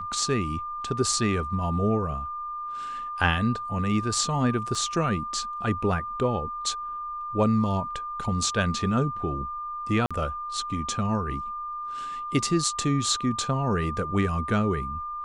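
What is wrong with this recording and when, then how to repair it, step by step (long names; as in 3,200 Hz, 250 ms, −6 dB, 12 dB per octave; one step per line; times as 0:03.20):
whistle 1,200 Hz −31 dBFS
0:04.75: drop-out 3.1 ms
0:10.06–0:10.11: drop-out 46 ms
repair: notch filter 1,200 Hz, Q 30
repair the gap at 0:04.75, 3.1 ms
repair the gap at 0:10.06, 46 ms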